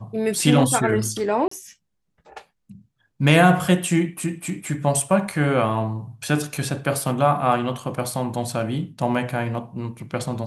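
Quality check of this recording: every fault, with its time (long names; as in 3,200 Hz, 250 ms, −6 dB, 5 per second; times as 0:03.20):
0:01.48–0:01.51: drop-out 34 ms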